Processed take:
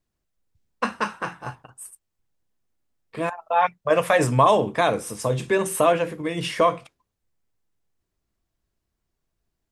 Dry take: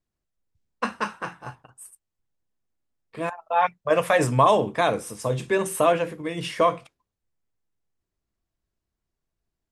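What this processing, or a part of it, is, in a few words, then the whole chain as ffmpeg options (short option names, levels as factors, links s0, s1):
parallel compression: -filter_complex "[0:a]asplit=2[s0][s1];[s1]acompressor=threshold=0.0316:ratio=6,volume=0.631[s2];[s0][s2]amix=inputs=2:normalize=0"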